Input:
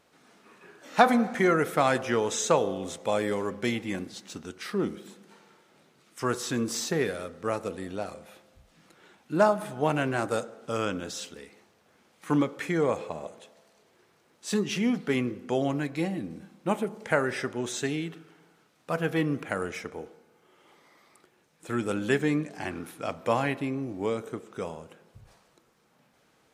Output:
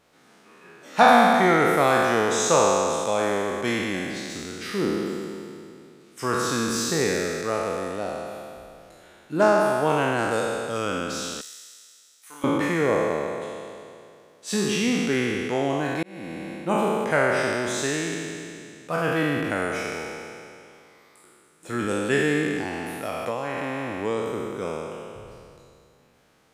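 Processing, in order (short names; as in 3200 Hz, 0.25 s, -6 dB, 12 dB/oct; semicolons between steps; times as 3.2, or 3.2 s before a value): spectral trails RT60 2.47 s; 11.41–12.44 differentiator; 16.03–16.53 fade in; 22.6–23.98 compressor 6:1, threshold -25 dBFS, peak gain reduction 8.5 dB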